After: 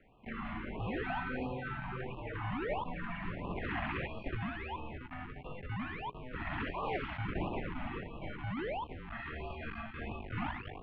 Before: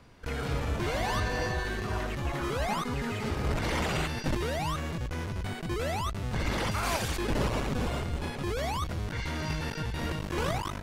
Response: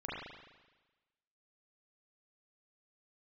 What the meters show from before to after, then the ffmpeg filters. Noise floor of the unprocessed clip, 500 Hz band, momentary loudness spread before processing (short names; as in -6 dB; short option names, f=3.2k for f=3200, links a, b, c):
-38 dBFS, -8.0 dB, 5 LU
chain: -af "highpass=f=210:t=q:w=0.5412,highpass=f=210:t=q:w=1.307,lowpass=f=3k:t=q:w=0.5176,lowpass=f=3k:t=q:w=0.7071,lowpass=f=3k:t=q:w=1.932,afreqshift=-240,bandreject=f=80.44:t=h:w=4,bandreject=f=160.88:t=h:w=4,bandreject=f=241.32:t=h:w=4,bandreject=f=321.76:t=h:w=4,bandreject=f=402.2:t=h:w=4,bandreject=f=482.64:t=h:w=4,afftfilt=real='re*(1-between(b*sr/1024,410*pow(1800/410,0.5+0.5*sin(2*PI*1.5*pts/sr))/1.41,410*pow(1800/410,0.5+0.5*sin(2*PI*1.5*pts/sr))*1.41))':imag='im*(1-between(b*sr/1024,410*pow(1800/410,0.5+0.5*sin(2*PI*1.5*pts/sr))/1.41,410*pow(1800/410,0.5+0.5*sin(2*PI*1.5*pts/sr))*1.41))':win_size=1024:overlap=0.75,volume=-3.5dB"